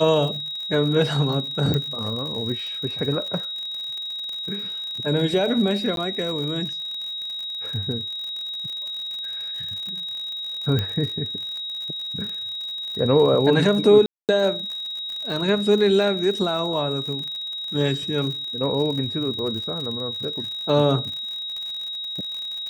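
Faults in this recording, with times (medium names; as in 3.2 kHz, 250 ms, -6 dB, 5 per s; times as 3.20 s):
crackle 65 per s -30 dBFS
whine 3.8 kHz -28 dBFS
1.74 s: pop -11 dBFS
5.96–5.97 s: dropout 12 ms
10.79 s: pop -12 dBFS
14.06–14.29 s: dropout 228 ms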